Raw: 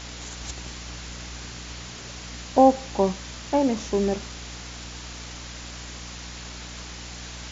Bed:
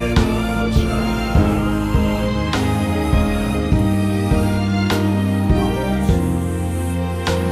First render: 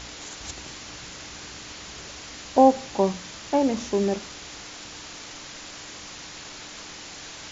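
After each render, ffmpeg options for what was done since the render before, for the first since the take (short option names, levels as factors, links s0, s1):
-af "bandreject=f=60:t=h:w=4,bandreject=f=120:t=h:w=4,bandreject=f=180:t=h:w=4,bandreject=f=240:t=h:w=4"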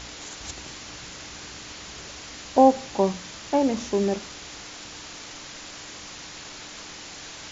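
-af anull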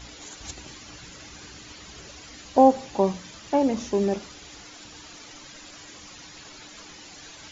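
-af "afftdn=nr=10:nf=-41"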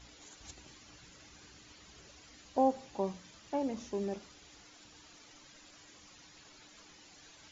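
-af "volume=0.237"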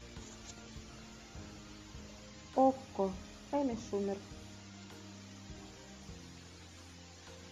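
-filter_complex "[1:a]volume=0.0168[s0];[0:a][s0]amix=inputs=2:normalize=0"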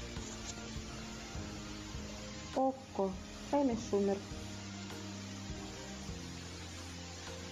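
-filter_complex "[0:a]asplit=2[s0][s1];[s1]acompressor=mode=upward:threshold=0.00794:ratio=2.5,volume=0.794[s2];[s0][s2]amix=inputs=2:normalize=0,alimiter=limit=0.075:level=0:latency=1:release=422"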